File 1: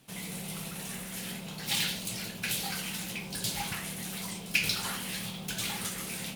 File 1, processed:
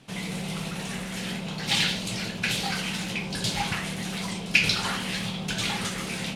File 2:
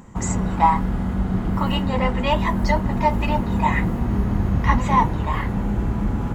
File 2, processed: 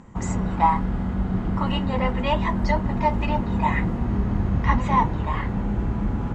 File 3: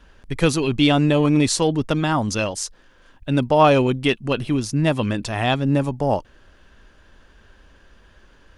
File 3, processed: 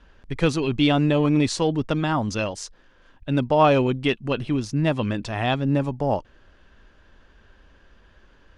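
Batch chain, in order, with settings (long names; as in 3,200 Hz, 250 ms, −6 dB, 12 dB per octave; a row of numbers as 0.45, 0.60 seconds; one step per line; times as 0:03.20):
high-frequency loss of the air 73 metres
normalise the peak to −6 dBFS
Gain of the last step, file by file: +8.5, −2.0, −2.5 decibels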